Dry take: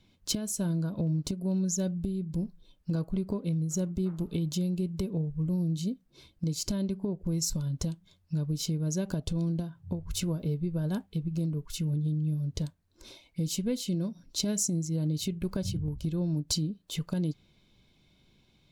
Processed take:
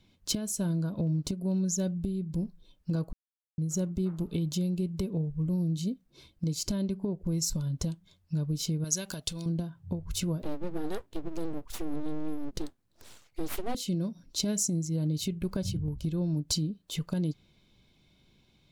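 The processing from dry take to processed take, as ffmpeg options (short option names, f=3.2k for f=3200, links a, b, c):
-filter_complex "[0:a]asettb=1/sr,asplit=3[a][b][c];[a]atrim=end=8.844[d];[b]atrim=start=8.84:end=9.46,asetpts=PTS-STARTPTS,afade=t=in:d=0.004:c=qsin,afade=t=out:st=0.616:d=0.004:c=qsin,tiltshelf=f=1.1k:g=-9.5[e];[c]atrim=start=9.456[f];[d][e]acrossfade=d=0.004:c1=hsin:c2=qsin[g];[g][f]acrossfade=d=0.004:c1=qsin:c2=hsin,asettb=1/sr,asplit=3[h][i][j];[h]atrim=end=10.424[k];[i]atrim=start=10.42:end=13.75,asetpts=PTS-STARTPTS,afade=t=in:d=0.004:c=qsin,afade=t=out:st=3.326:d=0.004:c=qsin,aeval=exprs='abs(val(0))':c=same[l];[j]atrim=start=13.746[m];[k][l]acrossfade=d=0.004:c1=hsin:c2=qsin[n];[n][m]acrossfade=d=0.004:c1=qsin:c2=hsin,asplit=3[o][p][q];[o]atrim=end=3.13,asetpts=PTS-STARTPTS,afade=t=out:st=3.126:d=0.004:c=hsin[r];[p]atrim=start=3.13:end=3.58,asetpts=PTS-STARTPTS,volume=0[s];[q]atrim=start=3.58,asetpts=PTS-STARTPTS,afade=t=in:d=0.004:c=hsin[t];[r][s][t]concat=n=3:v=0:a=1"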